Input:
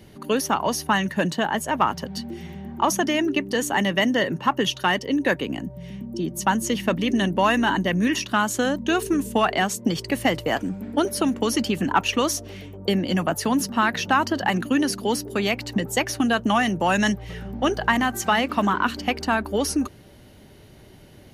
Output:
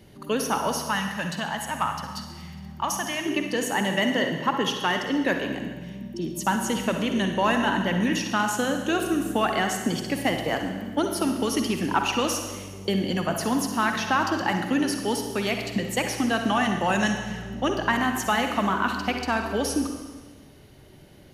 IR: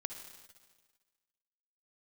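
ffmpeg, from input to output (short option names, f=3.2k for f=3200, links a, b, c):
-filter_complex "[0:a]asettb=1/sr,asplit=3[a][b][c];[a]atrim=end=0.784[d];[b]atrim=start=0.78:end=3.26,asetpts=PTS-STARTPTS,afade=t=in:d=0.004:c=qsin,afade=t=out:st=2.476:d=0.004:c=qsin,equalizer=f=390:w=1.1:g=-14[e];[c]atrim=start=3.256[f];[d][e]acrossfade=d=0.004:c1=hsin:c2=qsin[g];[g][f]acrossfade=d=0.004:c1=qsin:c2=hsin[h];[1:a]atrim=start_sample=2205,asetrate=48510,aresample=44100[i];[h][i]afir=irnorm=-1:irlink=0"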